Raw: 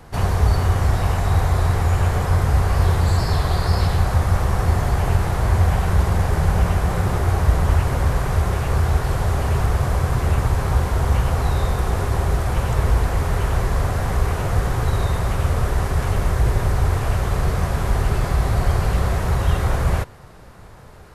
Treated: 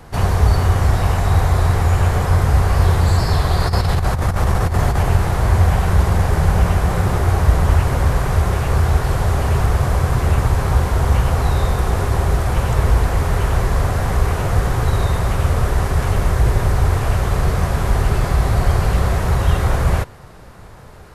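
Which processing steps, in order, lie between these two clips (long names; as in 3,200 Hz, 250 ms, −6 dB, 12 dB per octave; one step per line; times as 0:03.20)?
0:03.60–0:05.04: compressor whose output falls as the input rises −18 dBFS, ratio −0.5
level +3 dB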